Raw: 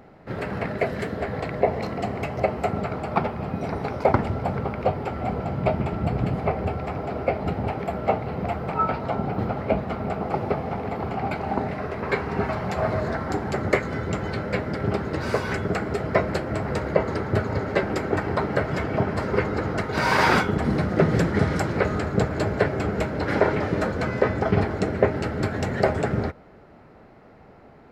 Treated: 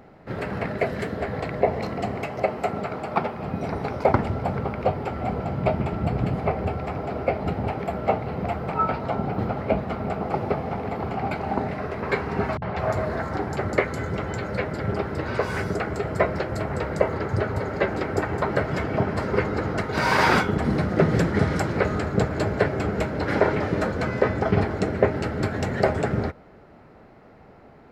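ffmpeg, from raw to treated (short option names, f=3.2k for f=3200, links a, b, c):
-filter_complex "[0:a]asettb=1/sr,asplit=3[a][b][c];[a]atrim=end=2.204[d];[b]atrim=start=2.2:end=3.44,asetpts=PTS-STARTPTS,afade=t=in:d=0.004:c=qsin,afade=t=out:st=1.236:d=0.004:c=qsin,highpass=f=200:p=1[e];[c]atrim=start=3.436[f];[d][e]acrossfade=d=0.004:c1=hsin:c2=qsin[g];[g][f]acrossfade=d=0.004:c1=qsin:c2=hsin,asettb=1/sr,asplit=3[h][i][j];[h]atrim=end=12.574[k];[i]atrim=start=12.57:end=18.51,asetpts=PTS-STARTPTS,afade=t=in:d=0.004:c=qsin,afade=t=out:st=5.936:d=0.004:c=qsin,acrossover=split=220|4500[l][m][n];[m]adelay=50[o];[n]adelay=210[p];[l][o][p]amix=inputs=3:normalize=0,atrim=end_sample=261954[q];[j]atrim=start=18.506[r];[k][q]acrossfade=d=0.004:c1=hsin:c2=qsin[s];[s][r]acrossfade=d=0.004:c1=qsin:c2=hsin"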